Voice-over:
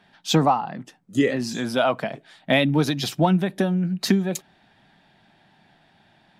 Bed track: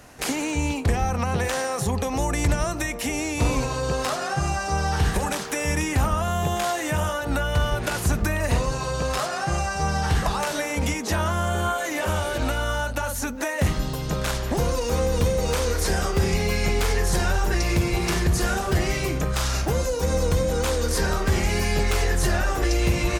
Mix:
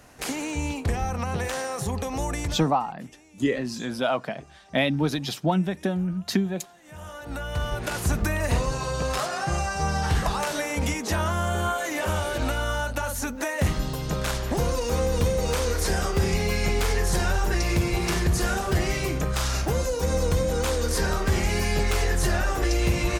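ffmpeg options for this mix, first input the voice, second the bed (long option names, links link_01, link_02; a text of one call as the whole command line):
ffmpeg -i stem1.wav -i stem2.wav -filter_complex "[0:a]adelay=2250,volume=-4dB[link_01];[1:a]volume=22.5dB,afade=type=out:start_time=2.32:duration=0.39:silence=0.0630957,afade=type=in:start_time=6.82:duration=1.35:silence=0.0473151[link_02];[link_01][link_02]amix=inputs=2:normalize=0" out.wav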